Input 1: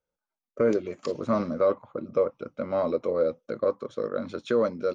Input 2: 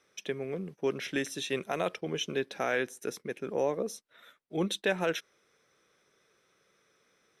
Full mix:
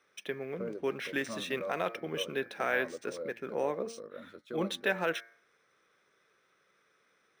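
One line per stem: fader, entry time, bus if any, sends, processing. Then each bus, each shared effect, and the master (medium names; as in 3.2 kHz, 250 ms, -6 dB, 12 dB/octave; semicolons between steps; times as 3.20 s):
-16.0 dB, 0.00 s, no send, none
-3.0 dB, 0.00 s, no send, peaking EQ 1.5 kHz +5.5 dB 1.6 oct; de-hum 114.9 Hz, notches 21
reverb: none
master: bass shelf 130 Hz -5 dB; decimation joined by straight lines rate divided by 3×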